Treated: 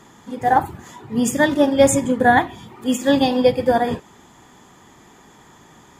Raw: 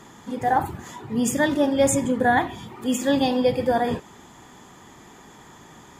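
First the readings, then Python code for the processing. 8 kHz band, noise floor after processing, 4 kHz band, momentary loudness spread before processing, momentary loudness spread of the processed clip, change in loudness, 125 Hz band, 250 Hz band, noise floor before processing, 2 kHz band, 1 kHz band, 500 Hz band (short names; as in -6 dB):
+2.5 dB, -49 dBFS, +4.0 dB, 12 LU, 13 LU, +4.5 dB, +2.5 dB, +3.5 dB, -48 dBFS, +5.0 dB, +4.5 dB, +5.0 dB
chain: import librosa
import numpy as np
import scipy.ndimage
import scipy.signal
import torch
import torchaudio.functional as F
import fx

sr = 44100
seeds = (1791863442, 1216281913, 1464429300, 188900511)

y = fx.upward_expand(x, sr, threshold_db=-30.0, expansion=1.5)
y = y * librosa.db_to_amplitude(6.5)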